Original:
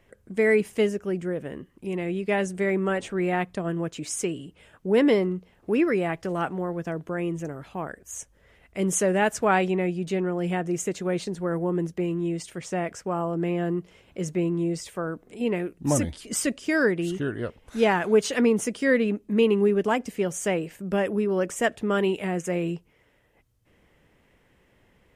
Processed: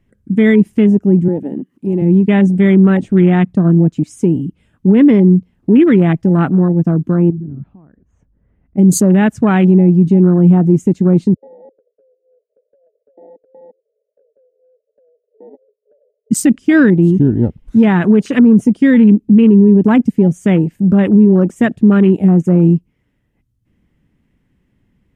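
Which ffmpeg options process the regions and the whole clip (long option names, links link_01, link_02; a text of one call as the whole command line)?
ffmpeg -i in.wav -filter_complex "[0:a]asettb=1/sr,asplit=3[link_01][link_02][link_03];[link_01]atrim=end=1.284[link_04];[link_02]atrim=start=1.28:end=2.02,asetpts=PTS-STARTPTS,afade=type=in:duration=0.004:curve=qsin,afade=type=out:start_time=0.736:duration=0.004:curve=qsin,highpass=250,acompressor=mode=upward:threshold=-49dB:ratio=2.5:attack=3.2:release=140:knee=2.83:detection=peak[link_05];[link_03]atrim=start=2.016[link_06];[link_04][link_05]acrossfade=duration=0.004:curve1=hsin:curve2=qsin[link_07];[link_07][link_06]acrossfade=duration=0.004:curve1=qsin:curve2=hsin,asettb=1/sr,asplit=3[link_08][link_09][link_10];[link_08]atrim=end=7.304[link_11];[link_09]atrim=start=7.3:end=8.78,asetpts=PTS-STARTPTS,afade=type=in:duration=0.004:curve=qsin,afade=type=out:start_time=1.476:duration=0.004:curve=qsin,lowpass=1100,acompressor=threshold=-43dB:ratio=3:attack=3.2:release=140:knee=1:detection=peak[link_12];[link_10]atrim=start=8.776[link_13];[link_11][link_12]acrossfade=duration=0.004:curve1=hsin:curve2=qsin[link_14];[link_14][link_13]acrossfade=duration=0.004:curve1=qsin:curve2=hsin,asettb=1/sr,asplit=3[link_15][link_16][link_17];[link_15]atrim=end=11.344[link_18];[link_16]atrim=start=11.34:end=16.31,asetpts=PTS-STARTPTS,afade=type=in:duration=0.004:curve=qsin,afade=type=out:start_time=4.966:duration=0.004:curve=qsin,asuperpass=centerf=520:order=20:qfactor=2.3,acompressor=threshold=-42dB:ratio=16:attack=3.2:release=140:knee=1:detection=peak[link_19];[link_17]atrim=start=16.306[link_20];[link_18][link_19]acrossfade=duration=0.004:curve1=hsin:curve2=qsin[link_21];[link_21][link_20]acrossfade=duration=0.004:curve1=qsin:curve2=hsin,afwtdn=0.0251,lowshelf=frequency=350:width_type=q:width=1.5:gain=11,alimiter=level_in=10dB:limit=-1dB:release=50:level=0:latency=1,volume=-1dB" out.wav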